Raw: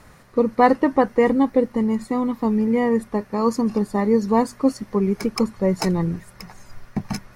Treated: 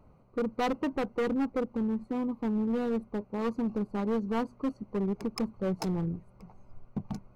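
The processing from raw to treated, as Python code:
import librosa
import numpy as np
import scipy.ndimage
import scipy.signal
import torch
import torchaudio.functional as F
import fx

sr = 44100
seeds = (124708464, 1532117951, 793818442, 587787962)

y = fx.wiener(x, sr, points=25)
y = np.clip(y, -10.0 ** (-16.5 / 20.0), 10.0 ** (-16.5 / 20.0))
y = y * 10.0 ** (-8.5 / 20.0)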